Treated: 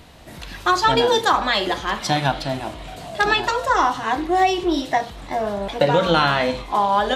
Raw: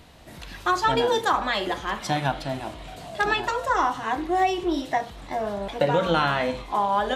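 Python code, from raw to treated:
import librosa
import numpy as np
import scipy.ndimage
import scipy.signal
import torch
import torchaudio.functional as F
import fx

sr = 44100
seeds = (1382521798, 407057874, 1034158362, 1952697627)

y = fx.dynamic_eq(x, sr, hz=4400.0, q=1.5, threshold_db=-44.0, ratio=4.0, max_db=5)
y = y * 10.0 ** (4.5 / 20.0)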